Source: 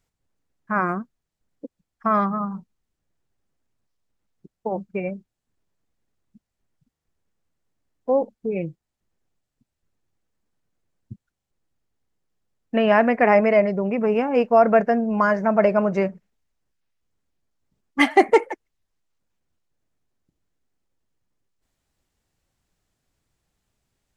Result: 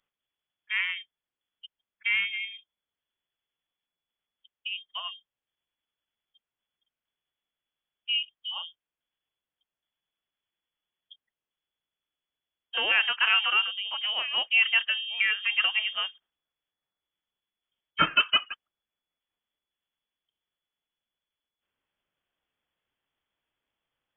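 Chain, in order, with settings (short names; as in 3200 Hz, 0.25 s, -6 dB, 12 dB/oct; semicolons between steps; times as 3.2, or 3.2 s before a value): tilt +3 dB/oct; inverted band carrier 3400 Hz; gain -6 dB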